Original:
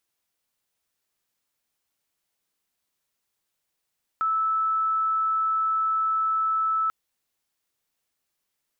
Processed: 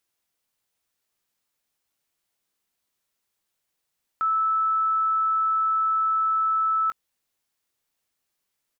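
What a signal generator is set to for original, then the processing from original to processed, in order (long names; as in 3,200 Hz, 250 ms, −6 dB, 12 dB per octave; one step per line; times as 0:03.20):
tone sine 1,310 Hz −21 dBFS 2.69 s
double-tracking delay 19 ms −12 dB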